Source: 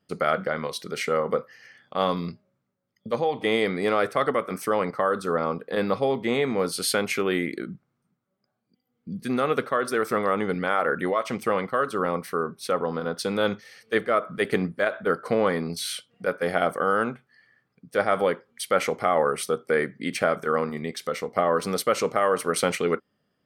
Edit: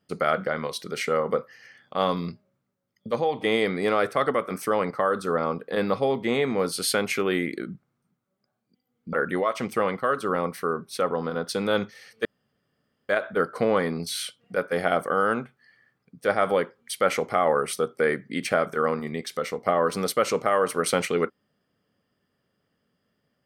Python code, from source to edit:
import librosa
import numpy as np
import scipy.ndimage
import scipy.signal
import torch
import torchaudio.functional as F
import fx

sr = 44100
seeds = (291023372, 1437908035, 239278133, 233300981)

y = fx.edit(x, sr, fx.cut(start_s=9.13, length_s=1.7),
    fx.room_tone_fill(start_s=13.95, length_s=0.84), tone=tone)